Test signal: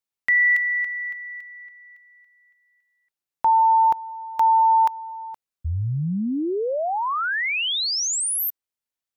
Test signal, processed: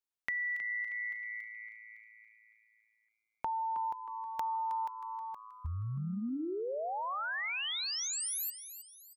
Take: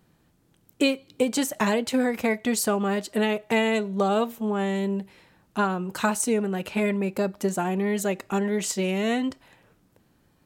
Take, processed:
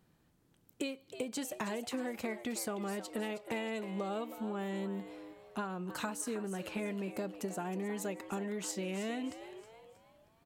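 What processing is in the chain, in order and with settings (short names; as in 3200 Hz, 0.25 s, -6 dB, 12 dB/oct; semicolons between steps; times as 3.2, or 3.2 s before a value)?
compressor 4:1, threshold -29 dBFS; frequency-shifting echo 0.316 s, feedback 40%, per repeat +110 Hz, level -12 dB; gain -7 dB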